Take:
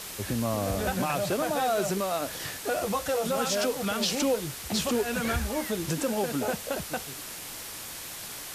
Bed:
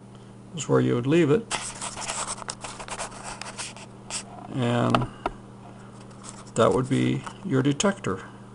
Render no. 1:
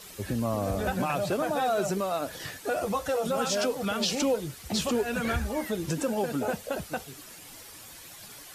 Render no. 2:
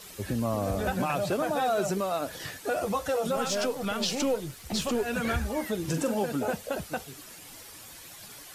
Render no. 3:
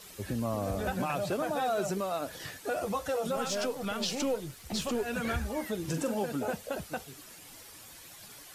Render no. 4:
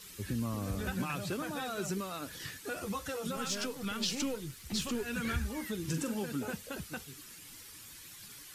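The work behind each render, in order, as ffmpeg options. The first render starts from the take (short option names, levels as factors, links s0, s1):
-af "afftdn=nr=10:nf=-40"
-filter_complex "[0:a]asettb=1/sr,asplit=3[s0][s1][s2];[s0]atrim=end=3.364[s3];[s1]atrim=start=3.36:end=5.02,asetpts=PTS-STARTPTS,afade=t=in:d=0.004:c=qsin,afade=t=out:st=1.656:d=0.004:c=qsin,aeval=exprs='if(lt(val(0),0),0.708*val(0),val(0))':c=same[s4];[s2]atrim=start=5.016[s5];[s3][s4]acrossfade=d=0.004:c1=hsin:c2=qsin[s6];[s6][s5]acrossfade=d=0.004:c1=qsin:c2=hsin,asettb=1/sr,asplit=3[s7][s8][s9];[s7]atrim=end=5.814[s10];[s8]atrim=start=5.81:end=6.24,asetpts=PTS-STARTPTS,afade=t=in:d=0.004:c=qsin,afade=t=out:st=0.426:d=0.004:c=qsin,asplit=2[s11][s12];[s12]adelay=43,volume=0.398[s13];[s11][s13]amix=inputs=2:normalize=0,atrim=end_sample=18963[s14];[s9]atrim=start=6.236[s15];[s10][s14]acrossfade=d=0.004:c1=hsin:c2=qsin[s16];[s16][s15]acrossfade=d=0.004:c1=qsin:c2=hsin"
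-af "volume=0.668"
-af "equalizer=f=660:t=o:w=0.97:g=-14"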